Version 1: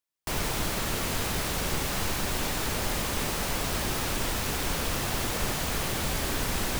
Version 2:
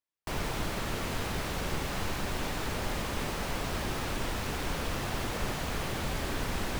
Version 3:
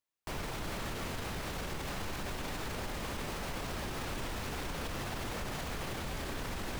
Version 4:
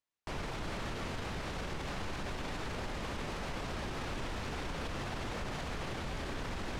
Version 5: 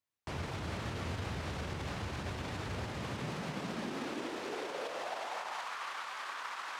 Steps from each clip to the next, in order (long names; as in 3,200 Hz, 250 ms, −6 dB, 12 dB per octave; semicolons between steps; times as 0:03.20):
high-shelf EQ 5,000 Hz −10 dB; level −2.5 dB
brickwall limiter −30.5 dBFS, peak gain reduction 10.5 dB; level +1 dB
high-frequency loss of the air 60 metres
high-pass filter sweep 84 Hz → 1,100 Hz, 0:02.74–0:05.77; level −1 dB